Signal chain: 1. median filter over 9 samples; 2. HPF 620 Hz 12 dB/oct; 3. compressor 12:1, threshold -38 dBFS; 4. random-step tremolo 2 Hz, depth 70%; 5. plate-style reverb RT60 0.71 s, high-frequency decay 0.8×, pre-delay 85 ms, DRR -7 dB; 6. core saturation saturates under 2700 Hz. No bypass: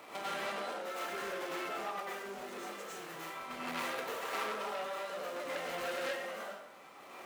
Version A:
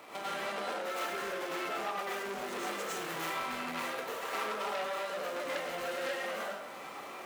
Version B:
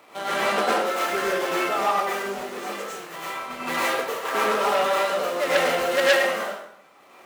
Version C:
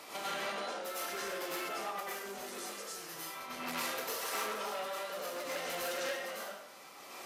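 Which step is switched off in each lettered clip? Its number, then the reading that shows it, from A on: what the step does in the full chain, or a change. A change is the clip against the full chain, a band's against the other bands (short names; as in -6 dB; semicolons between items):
4, momentary loudness spread change -4 LU; 3, crest factor change +4.0 dB; 1, 8 kHz band +8.0 dB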